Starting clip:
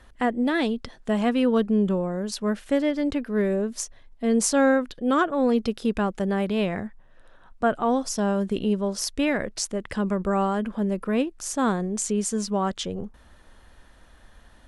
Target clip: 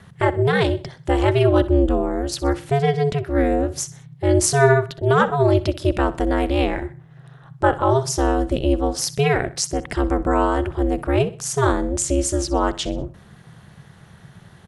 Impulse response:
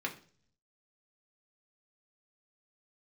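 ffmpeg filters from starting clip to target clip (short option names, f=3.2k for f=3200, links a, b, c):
-af "aeval=exprs='val(0)*sin(2*PI*140*n/s)':c=same,aecho=1:1:63|126|189:0.141|0.0551|0.0215,volume=8dB"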